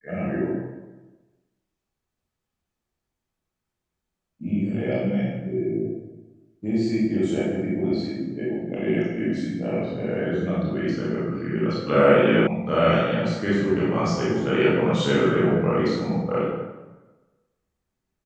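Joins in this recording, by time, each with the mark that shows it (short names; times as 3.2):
12.47 sound cut off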